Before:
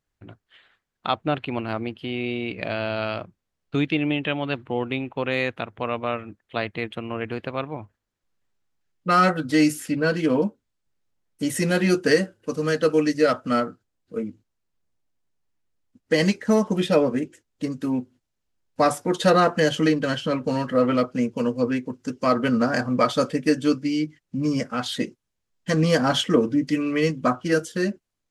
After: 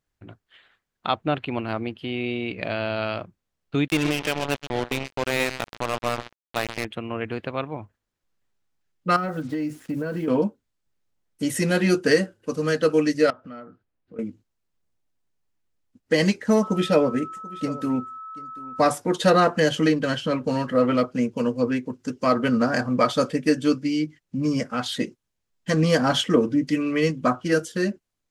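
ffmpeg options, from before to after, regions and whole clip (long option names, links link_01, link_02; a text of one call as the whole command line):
ffmpeg -i in.wav -filter_complex "[0:a]asettb=1/sr,asplit=3[link_01][link_02][link_03];[link_01]atrim=end=3.884[link_04];[link_02]atrim=start=3.88:end=6.85,asetpts=PTS-STARTPTS,afade=type=in:duration=0.004:curve=qsin,afade=type=out:start_time=2.966:duration=0.004:curve=qsin,aecho=1:1:127|254|381|508:0.335|0.114|0.0387|0.0132,atrim=end_sample=130977,acrusher=bits=3:mix=0:aa=0.5[link_05];[link_03]atrim=start=6.846[link_06];[link_04][link_05]acrossfade=duration=0.004:curve1=hsin:curve2=qsin[link_07];[link_07][link_06]acrossfade=duration=0.004:curve1=qsin:curve2=hsin,asettb=1/sr,asplit=3[link_08][link_09][link_10];[link_08]atrim=end=9.164[link_11];[link_09]atrim=start=9.16:end=10.28,asetpts=PTS-STARTPTS,afade=type=in:duration=0.004:curve=qsin,afade=type=out:start_time=1.116:duration=0.004:curve=qsin,lowpass=frequency=1000:poles=1,acrusher=bits=7:mix=0:aa=0.5,acompressor=threshold=-23dB:ratio=10:attack=3.2:release=140:knee=1:detection=peak[link_12];[link_10]atrim=start=10.276[link_13];[link_11][link_12]acrossfade=duration=0.004:curve1=hsin:curve2=qsin[link_14];[link_14][link_13]acrossfade=duration=0.004:curve1=qsin:curve2=hsin,asettb=1/sr,asplit=3[link_15][link_16][link_17];[link_15]atrim=end=13.304[link_18];[link_16]atrim=start=13.3:end=14.19,asetpts=PTS-STARTPTS,afade=type=in:duration=0.004:curve=qsin,afade=type=out:start_time=0.886:duration=0.004:curve=qsin,lowpass=2700,acompressor=threshold=-42dB:ratio=3:attack=3.2:release=140:knee=1:detection=peak[link_19];[link_17]atrim=start=14.186[link_20];[link_18][link_19]acrossfade=duration=0.004:curve1=hsin:curve2=qsin[link_21];[link_21][link_20]acrossfade=duration=0.004:curve1=qsin:curve2=hsin,asettb=1/sr,asplit=3[link_22][link_23][link_24];[link_22]atrim=end=16.634[link_25];[link_23]atrim=start=16.63:end=18.89,asetpts=PTS-STARTPTS,afade=type=in:duration=0.004:curve=qsin,afade=type=out:start_time=2.256:duration=0.004:curve=qsin,aeval=exprs='val(0)+0.02*sin(2*PI*1300*n/s)':channel_layout=same,aecho=1:1:735:0.112,atrim=end_sample=99666[link_26];[link_24]atrim=start=18.886[link_27];[link_25][link_26]acrossfade=duration=0.004:curve1=hsin:curve2=qsin[link_28];[link_28][link_27]acrossfade=duration=0.004:curve1=qsin:curve2=hsin" out.wav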